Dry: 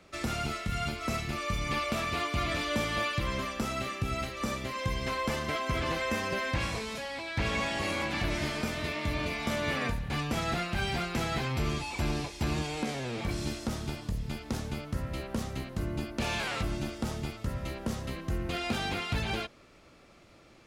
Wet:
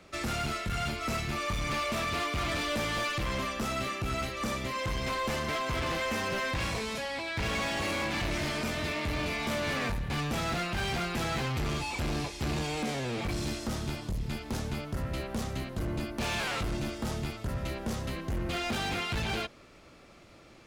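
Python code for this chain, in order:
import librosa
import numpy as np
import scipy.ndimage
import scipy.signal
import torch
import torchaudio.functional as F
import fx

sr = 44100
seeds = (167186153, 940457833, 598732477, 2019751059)

y = np.clip(x, -10.0 ** (-31.0 / 20.0), 10.0 ** (-31.0 / 20.0))
y = F.gain(torch.from_numpy(y), 2.5).numpy()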